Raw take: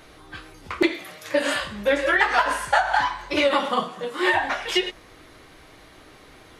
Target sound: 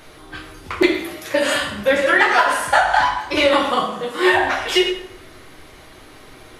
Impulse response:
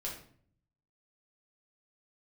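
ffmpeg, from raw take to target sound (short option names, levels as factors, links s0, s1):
-filter_complex "[0:a]asplit=2[s0][s1];[s1]highshelf=f=11000:g=11.5[s2];[1:a]atrim=start_sample=2205,asetrate=27783,aresample=44100[s3];[s2][s3]afir=irnorm=-1:irlink=0,volume=0.708[s4];[s0][s4]amix=inputs=2:normalize=0"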